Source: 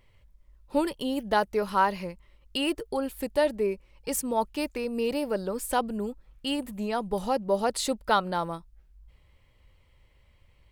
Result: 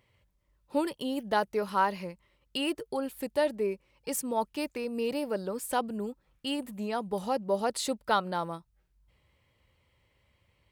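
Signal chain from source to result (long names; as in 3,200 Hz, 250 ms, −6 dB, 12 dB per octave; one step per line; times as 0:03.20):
high-pass filter 89 Hz 12 dB per octave
level −3 dB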